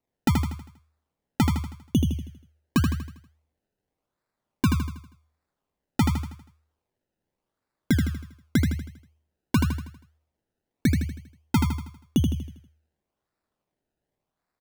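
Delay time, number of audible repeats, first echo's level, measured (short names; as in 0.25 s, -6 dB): 80 ms, 5, -4.5 dB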